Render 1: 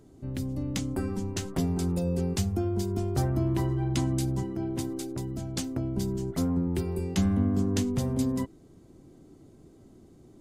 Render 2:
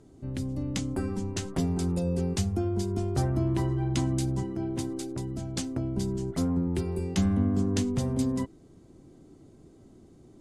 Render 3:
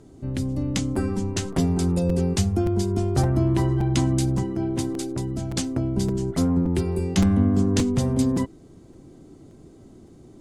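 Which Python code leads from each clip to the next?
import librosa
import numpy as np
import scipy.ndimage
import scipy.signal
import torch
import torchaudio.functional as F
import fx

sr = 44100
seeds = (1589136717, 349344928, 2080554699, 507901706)

y1 = scipy.signal.sosfilt(scipy.signal.butter(4, 11000.0, 'lowpass', fs=sr, output='sos'), x)
y2 = fx.buffer_crackle(y1, sr, first_s=0.95, period_s=0.57, block=256, kind='repeat')
y2 = F.gain(torch.from_numpy(y2), 6.0).numpy()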